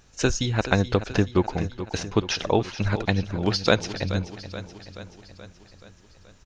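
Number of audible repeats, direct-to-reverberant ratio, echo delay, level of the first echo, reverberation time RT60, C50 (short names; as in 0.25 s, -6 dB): 5, none, 0.428 s, -13.0 dB, none, none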